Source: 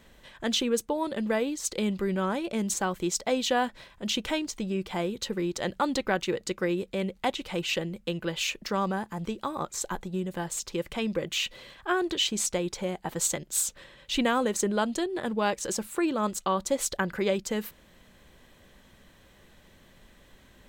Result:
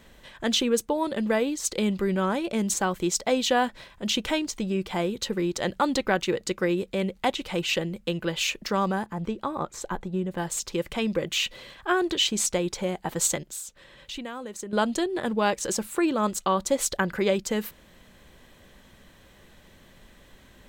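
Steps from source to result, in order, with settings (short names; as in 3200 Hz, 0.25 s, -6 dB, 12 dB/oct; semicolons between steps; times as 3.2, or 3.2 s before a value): 9.06–10.38 high shelf 3200 Hz -10.5 dB; 13.42–14.73 compressor 2.5:1, threshold -44 dBFS, peak gain reduction 15 dB; gain +3 dB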